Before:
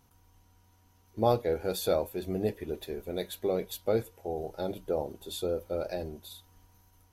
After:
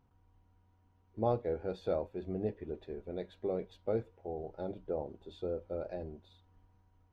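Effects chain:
head-to-tape spacing loss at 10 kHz 35 dB
level −4 dB

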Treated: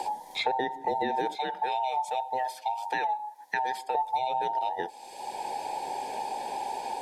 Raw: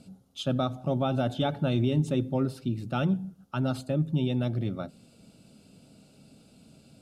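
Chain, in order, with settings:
frequency inversion band by band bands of 1,000 Hz
0:01.35–0:03.95: high-pass filter 1,200 Hz 6 dB per octave
multiband upward and downward compressor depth 100%

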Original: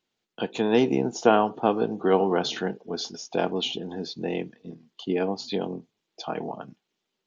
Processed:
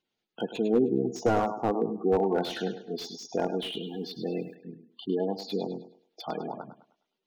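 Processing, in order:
gate on every frequency bin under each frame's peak −15 dB strong
on a send: feedback echo with a high-pass in the loop 103 ms, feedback 36%, high-pass 300 Hz, level −10 dB
0:03.80–0:04.55: on the sum: bit-depth reduction 12 bits, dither none
slew-rate limiting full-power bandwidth 83 Hz
level −2.5 dB

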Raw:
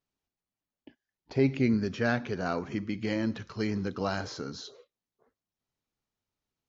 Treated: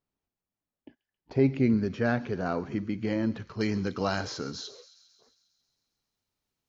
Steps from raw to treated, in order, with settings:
high-shelf EQ 2,000 Hz −9 dB, from 0:03.61 +2 dB
delay with a high-pass on its return 135 ms, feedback 66%, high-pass 3,700 Hz, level −13 dB
level +2 dB

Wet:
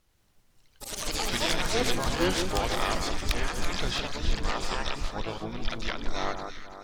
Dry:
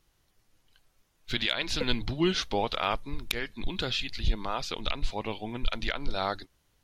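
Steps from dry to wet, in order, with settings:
pitch-shifted copies added −12 semitones −7 dB, +7 semitones −5 dB
delay that swaps between a low-pass and a high-pass 167 ms, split 1,500 Hz, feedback 66%, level −6 dB
delay with pitch and tempo change per echo 89 ms, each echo +5 semitones, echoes 3
level −3 dB

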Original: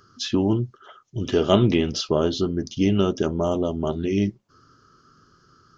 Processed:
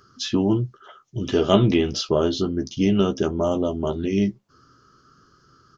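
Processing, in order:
double-tracking delay 15 ms −9 dB

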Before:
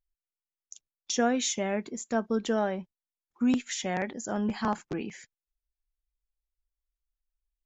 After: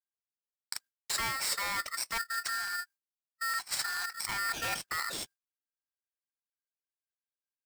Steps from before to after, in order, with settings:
in parallel at +1.5 dB: output level in coarse steps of 17 dB
on the sum: hard clipping −22.5 dBFS, distortion −9 dB
high-shelf EQ 3,000 Hz +9.5 dB
downward expander −45 dBFS
time-frequency box erased 0:02.18–0:04.23, 280–2,300 Hz
reversed playback
downward compressor 5 to 1, threshold −32 dBFS, peak gain reduction 13.5 dB
reversed playback
ring modulator with a square carrier 1,600 Hz

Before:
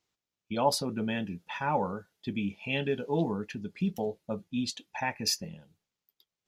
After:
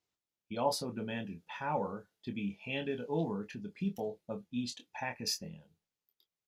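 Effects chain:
parametric band 420 Hz +2 dB 1.5 octaves
double-tracking delay 25 ms −7 dB
level −7 dB

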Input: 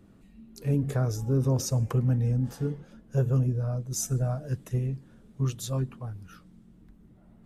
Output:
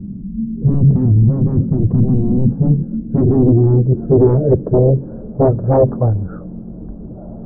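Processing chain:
linear-phase brick-wall low-pass 1,700 Hz
sine wavefolder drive 14 dB, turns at −15 dBFS
low-pass filter sweep 200 Hz → 600 Hz, 0:02.26–0:05.39
level +5.5 dB

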